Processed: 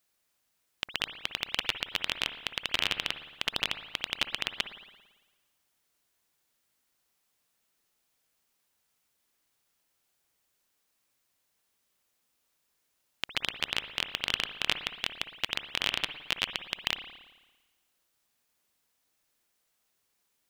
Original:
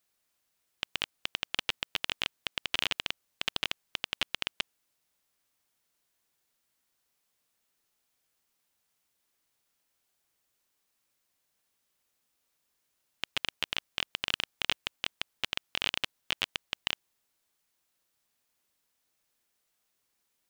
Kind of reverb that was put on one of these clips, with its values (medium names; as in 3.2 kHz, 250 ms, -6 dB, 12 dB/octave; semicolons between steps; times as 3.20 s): spring tank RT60 1.2 s, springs 56 ms, chirp 70 ms, DRR 9 dB; trim +1.5 dB